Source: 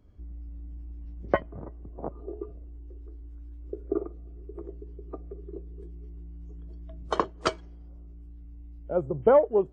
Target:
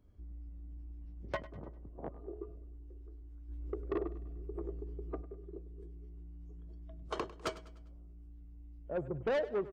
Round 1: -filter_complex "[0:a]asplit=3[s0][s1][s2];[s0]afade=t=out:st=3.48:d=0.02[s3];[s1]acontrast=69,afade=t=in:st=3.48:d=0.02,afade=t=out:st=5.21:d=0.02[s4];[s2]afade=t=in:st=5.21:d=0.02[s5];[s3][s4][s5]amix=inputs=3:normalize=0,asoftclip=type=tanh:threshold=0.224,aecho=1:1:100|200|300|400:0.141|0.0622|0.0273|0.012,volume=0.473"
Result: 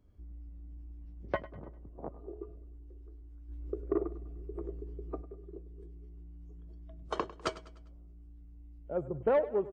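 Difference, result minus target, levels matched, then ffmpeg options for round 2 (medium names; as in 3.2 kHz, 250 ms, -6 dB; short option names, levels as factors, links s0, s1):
saturation: distortion -10 dB
-filter_complex "[0:a]asplit=3[s0][s1][s2];[s0]afade=t=out:st=3.48:d=0.02[s3];[s1]acontrast=69,afade=t=in:st=3.48:d=0.02,afade=t=out:st=5.21:d=0.02[s4];[s2]afade=t=in:st=5.21:d=0.02[s5];[s3][s4][s5]amix=inputs=3:normalize=0,asoftclip=type=tanh:threshold=0.0794,aecho=1:1:100|200|300|400:0.141|0.0622|0.0273|0.012,volume=0.473"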